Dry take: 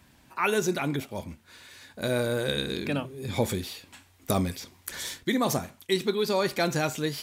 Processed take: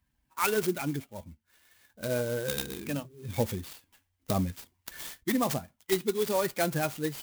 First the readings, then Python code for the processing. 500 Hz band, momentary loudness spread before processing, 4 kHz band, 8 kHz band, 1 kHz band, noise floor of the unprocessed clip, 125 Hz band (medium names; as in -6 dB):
-2.5 dB, 16 LU, -6.5 dB, -1.5 dB, -3.0 dB, -60 dBFS, -3.0 dB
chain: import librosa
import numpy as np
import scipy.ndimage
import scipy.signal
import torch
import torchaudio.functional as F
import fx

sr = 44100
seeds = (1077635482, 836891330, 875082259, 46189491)

y = fx.bin_expand(x, sr, power=1.5)
y = fx.clock_jitter(y, sr, seeds[0], jitter_ms=0.055)